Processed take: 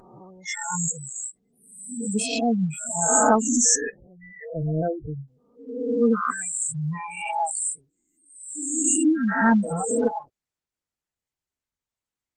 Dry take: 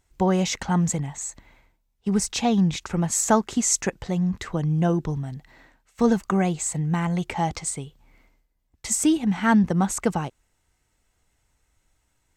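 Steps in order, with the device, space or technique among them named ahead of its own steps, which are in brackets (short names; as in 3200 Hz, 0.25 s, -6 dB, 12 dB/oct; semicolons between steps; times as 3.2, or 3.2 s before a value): spectral swells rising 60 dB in 1.80 s; 7.5–9.19 de-hum 94.76 Hz, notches 7; spectral noise reduction 26 dB; noise-suppressed video call (HPF 120 Hz 6 dB/oct; spectral gate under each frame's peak -15 dB strong; Opus 20 kbps 48000 Hz)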